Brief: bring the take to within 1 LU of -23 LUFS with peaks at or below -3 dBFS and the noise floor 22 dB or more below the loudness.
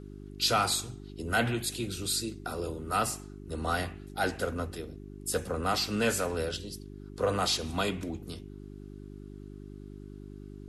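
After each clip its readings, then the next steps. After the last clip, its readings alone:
hum 50 Hz; highest harmonic 400 Hz; hum level -42 dBFS; loudness -31.0 LUFS; peak level -14.5 dBFS; loudness target -23.0 LUFS
-> de-hum 50 Hz, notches 8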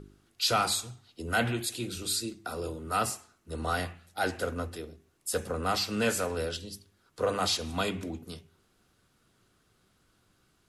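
hum not found; loudness -31.5 LUFS; peak level -14.5 dBFS; loudness target -23.0 LUFS
-> trim +8.5 dB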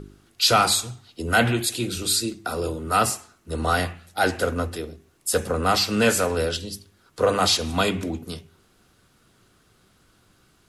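loudness -23.0 LUFS; peak level -6.0 dBFS; noise floor -61 dBFS

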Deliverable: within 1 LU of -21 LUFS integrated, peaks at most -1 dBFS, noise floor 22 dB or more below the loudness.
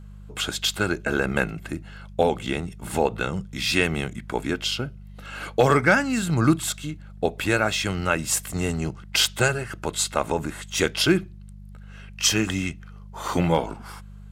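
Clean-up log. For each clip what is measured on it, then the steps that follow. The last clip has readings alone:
dropouts 4; longest dropout 3.0 ms; hum 50 Hz; highest harmonic 200 Hz; hum level -40 dBFS; loudness -24.0 LUFS; peak level -6.5 dBFS; loudness target -21.0 LUFS
-> interpolate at 2.47/4.71/9.25/13.28 s, 3 ms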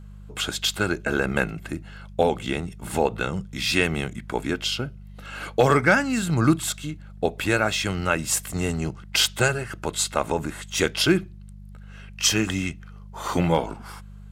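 dropouts 0; hum 50 Hz; highest harmonic 200 Hz; hum level -40 dBFS
-> de-hum 50 Hz, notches 4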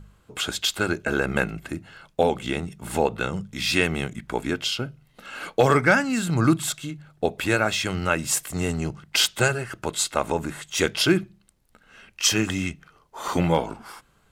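hum not found; loudness -24.0 LUFS; peak level -6.5 dBFS; loudness target -21.0 LUFS
-> trim +3 dB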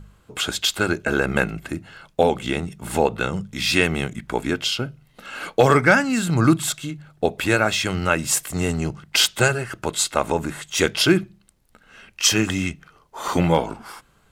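loudness -21.0 LUFS; peak level -3.5 dBFS; noise floor -59 dBFS

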